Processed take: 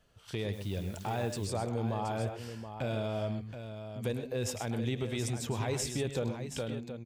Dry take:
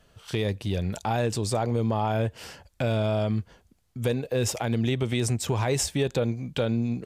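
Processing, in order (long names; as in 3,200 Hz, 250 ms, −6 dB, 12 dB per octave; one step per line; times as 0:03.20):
fade-out on the ending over 0.55 s
multi-tap delay 105/125/725 ms −12/−11.5/−9.5 dB
0:00.52–0:01.45: background noise white −51 dBFS
level −8.5 dB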